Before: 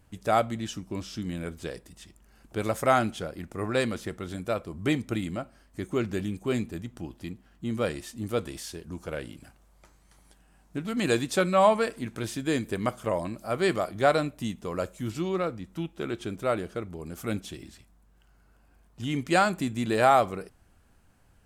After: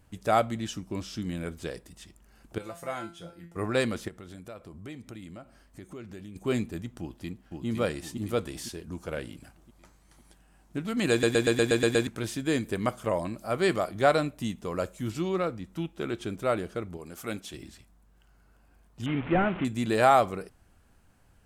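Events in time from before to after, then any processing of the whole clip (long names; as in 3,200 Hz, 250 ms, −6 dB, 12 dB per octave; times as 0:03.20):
0:02.58–0:03.56: tuned comb filter 170 Hz, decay 0.31 s, mix 90%
0:04.08–0:06.36: downward compressor 3 to 1, threshold −44 dBFS
0:07.00–0:07.66: delay throw 510 ms, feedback 50%, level −3 dB
0:11.11: stutter in place 0.12 s, 8 plays
0:16.97–0:17.54: low-shelf EQ 260 Hz −10 dB
0:19.06–0:19.65: linear delta modulator 16 kbit/s, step −32 dBFS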